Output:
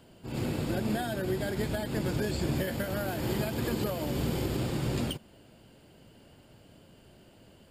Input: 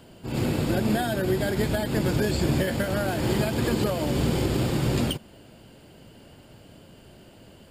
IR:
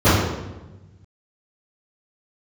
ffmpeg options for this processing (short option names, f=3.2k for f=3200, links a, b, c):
-filter_complex "[0:a]asettb=1/sr,asplit=3[a][b][c];[a]atrim=end=2.554[d];[b]atrim=start=2.55:end=4.56,asetpts=PTS-STARTPTS,afade=t=in:d=0.004:c=qsin,afade=t=out:st=2.006:d=0.004:c=qsin,equalizer=f=13k:w=4.4:g=11[e];[c]atrim=start=4.556[f];[d][e]acrossfade=d=0.004:c1=hsin:c2=qsin[g];[g][f]acrossfade=d=0.004:c1=qsin:c2=hsin,volume=-6.5dB"